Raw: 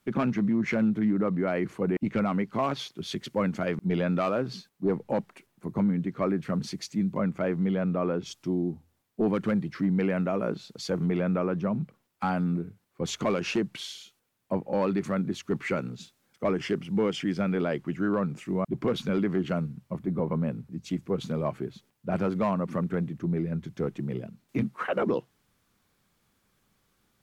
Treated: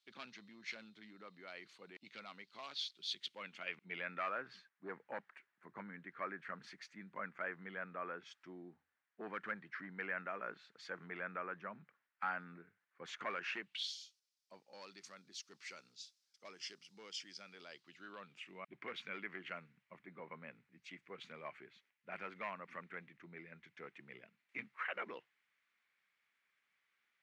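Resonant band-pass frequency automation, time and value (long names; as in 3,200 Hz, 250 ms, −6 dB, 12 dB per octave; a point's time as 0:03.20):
resonant band-pass, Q 3.1
0:03.07 4,100 Hz
0:04.30 1,700 Hz
0:13.51 1,700 Hz
0:13.94 5,100 Hz
0:17.63 5,100 Hz
0:18.80 2,100 Hz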